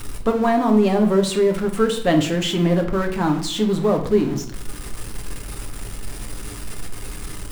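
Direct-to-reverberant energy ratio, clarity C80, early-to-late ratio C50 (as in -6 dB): 3.0 dB, 14.0 dB, 10.0 dB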